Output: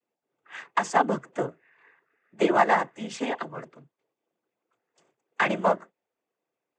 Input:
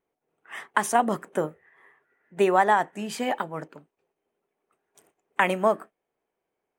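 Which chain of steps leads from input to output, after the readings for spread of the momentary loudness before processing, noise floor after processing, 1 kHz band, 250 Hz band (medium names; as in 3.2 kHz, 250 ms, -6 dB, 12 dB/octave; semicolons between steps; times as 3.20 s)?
13 LU, under -85 dBFS, -1.5 dB, 0.0 dB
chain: Chebyshev shaper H 7 -29 dB, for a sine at -6 dBFS; noise-vocoded speech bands 16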